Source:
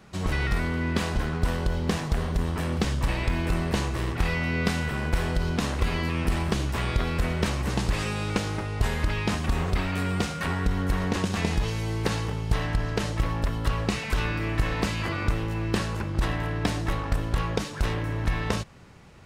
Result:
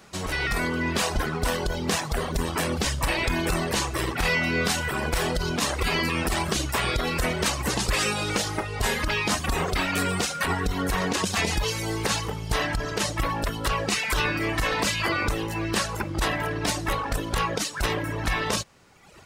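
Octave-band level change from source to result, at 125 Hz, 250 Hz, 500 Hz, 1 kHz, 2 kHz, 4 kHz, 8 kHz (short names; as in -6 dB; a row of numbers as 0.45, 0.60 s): -4.0, -0.5, +3.0, +4.5, +5.5, +7.0, +10.5 dB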